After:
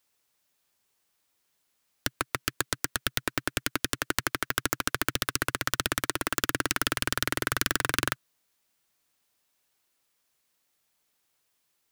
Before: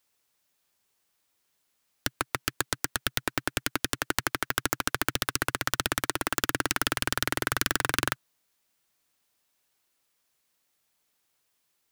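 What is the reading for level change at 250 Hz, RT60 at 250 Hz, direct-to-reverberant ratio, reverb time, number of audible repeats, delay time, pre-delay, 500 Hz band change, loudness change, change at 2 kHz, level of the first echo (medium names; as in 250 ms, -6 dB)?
0.0 dB, no reverb, no reverb, no reverb, no echo, no echo, no reverb, -0.5 dB, 0.0 dB, 0.0 dB, no echo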